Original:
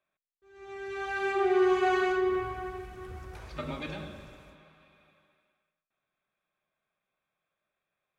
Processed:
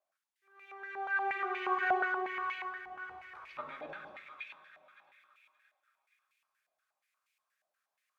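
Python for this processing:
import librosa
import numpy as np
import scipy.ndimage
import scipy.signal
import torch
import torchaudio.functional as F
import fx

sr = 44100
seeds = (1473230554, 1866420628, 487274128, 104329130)

p1 = fx.dmg_noise_colour(x, sr, seeds[0], colour='violet', level_db=-65.0)
p2 = p1 + fx.echo_wet_highpass(p1, sr, ms=573, feedback_pct=33, hz=1700.0, wet_db=-5.0, dry=0)
p3 = fx.filter_held_bandpass(p2, sr, hz=8.4, low_hz=720.0, high_hz=2400.0)
y = p3 * librosa.db_to_amplitude(5.5)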